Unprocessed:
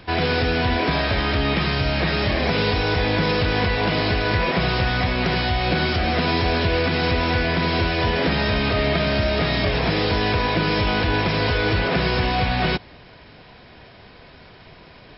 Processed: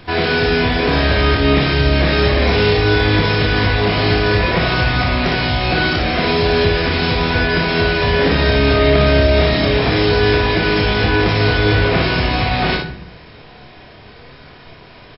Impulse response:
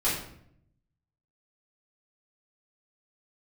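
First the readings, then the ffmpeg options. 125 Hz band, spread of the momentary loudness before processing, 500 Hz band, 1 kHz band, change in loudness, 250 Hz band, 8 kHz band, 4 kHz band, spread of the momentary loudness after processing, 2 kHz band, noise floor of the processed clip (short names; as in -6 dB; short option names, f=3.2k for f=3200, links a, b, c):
+6.0 dB, 1 LU, +7.0 dB, +3.5 dB, +6.0 dB, +5.5 dB, n/a, +5.0 dB, 3 LU, +6.0 dB, -40 dBFS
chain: -filter_complex "[0:a]asoftclip=type=hard:threshold=-9dB,aecho=1:1:29|58:0.398|0.562,asplit=2[a][b];[1:a]atrim=start_sample=2205[c];[b][c]afir=irnorm=-1:irlink=0,volume=-15dB[d];[a][d]amix=inputs=2:normalize=0,volume=1.5dB"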